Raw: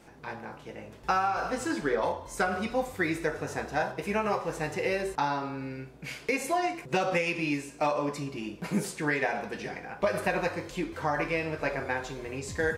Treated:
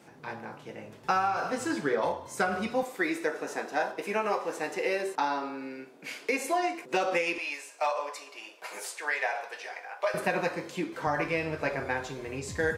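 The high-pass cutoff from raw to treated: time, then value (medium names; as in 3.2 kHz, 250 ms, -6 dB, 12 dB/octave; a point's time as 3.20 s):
high-pass 24 dB/octave
98 Hz
from 2.83 s 240 Hz
from 7.38 s 570 Hz
from 10.14 s 150 Hz
from 11.07 s 57 Hz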